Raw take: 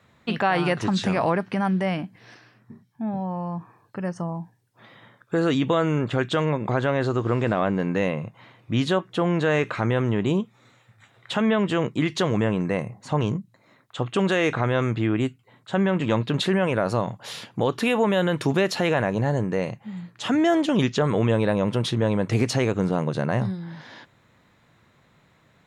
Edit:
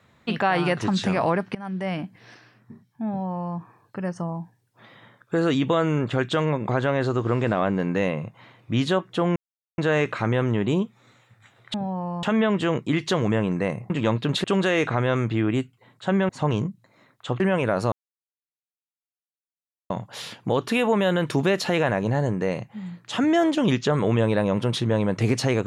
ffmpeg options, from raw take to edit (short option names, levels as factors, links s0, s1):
-filter_complex "[0:a]asplit=10[s0][s1][s2][s3][s4][s5][s6][s7][s8][s9];[s0]atrim=end=1.55,asetpts=PTS-STARTPTS,afade=t=out:st=1.546:d=0.004:c=hsin:silence=0.105925[s10];[s1]atrim=start=1.55:end=9.36,asetpts=PTS-STARTPTS,afade=t=in:d=0.49:silence=0.105925,afade=t=out:st=7.806:d=0.004:c=hsin,apad=pad_dur=0.42[s11];[s2]atrim=start=9.36:end=11.322,asetpts=PTS-STARTPTS,afade=t=in:d=0.004:c=hsin[s12];[s3]atrim=start=3.068:end=3.562[s13];[s4]atrim=start=11.318:end=12.992[s14];[s5]atrim=start=15.948:end=16.492[s15];[s6]atrim=start=14.098:end=15.952[s16];[s7]atrim=start=12.988:end=14.102[s17];[s8]atrim=start=16.488:end=17.01,asetpts=PTS-STARTPTS,afade=t=out:st=0.518:d=0.004:c=hsin,apad=pad_dur=1.98[s18];[s9]atrim=start=17.01,asetpts=PTS-STARTPTS,afade=t=in:d=0.004:c=hsin[s19];[s10][s11][s12]concat=n=3:v=0:a=1[s20];[s20][s13]acrossfade=d=0.004:c1=hsin:c2=hsin[s21];[s21][s14]acrossfade=d=0.004:c1=hsin:c2=hsin[s22];[s22][s15]acrossfade=d=0.004:c1=hsin:c2=hsin[s23];[s23][s16]acrossfade=d=0.004:c1=hsin:c2=hsin[s24];[s24][s17]acrossfade=d=0.004:c1=hsin:c2=hsin[s25];[s18][s19]concat=n=2:v=0:a=1[s26];[s25][s26]acrossfade=d=0.004:c1=hsin:c2=hsin"